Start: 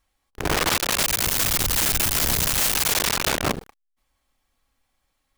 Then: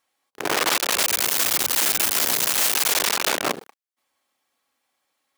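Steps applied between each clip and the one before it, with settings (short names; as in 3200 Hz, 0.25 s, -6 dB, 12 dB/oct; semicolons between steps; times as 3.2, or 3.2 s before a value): HPF 310 Hz 12 dB/oct; gain +1 dB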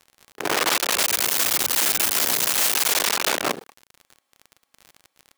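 crackle 45/s -31 dBFS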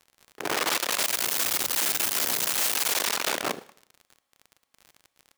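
reverb RT60 0.65 s, pre-delay 26 ms, DRR 18 dB; gain -5 dB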